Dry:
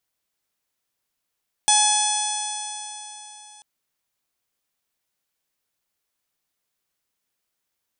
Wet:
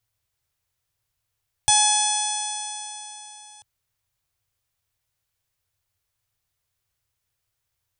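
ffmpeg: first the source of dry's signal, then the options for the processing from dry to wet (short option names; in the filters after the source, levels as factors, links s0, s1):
-f lavfi -i "aevalsrc='0.112*pow(10,-3*t/3.62)*sin(2*PI*841.5*t)+0.0282*pow(10,-3*t/3.62)*sin(2*PI*1686.03*t)+0.0282*pow(10,-3*t/3.62)*sin(2*PI*2536.59*t)+0.0944*pow(10,-3*t/3.62)*sin(2*PI*3396.14*t)+0.0266*pow(10,-3*t/3.62)*sin(2*PI*4267.61*t)+0.0447*pow(10,-3*t/3.62)*sin(2*PI*5153.84*t)+0.0891*pow(10,-3*t/3.62)*sin(2*PI*6057.61*t)+0.0473*pow(10,-3*t/3.62)*sin(2*PI*6981.58*t)+0.0562*pow(10,-3*t/3.62)*sin(2*PI*7928.32*t)+0.119*pow(10,-3*t/3.62)*sin(2*PI*8900.31*t)':d=1.94:s=44100"
-af "lowshelf=f=150:t=q:w=3:g=12"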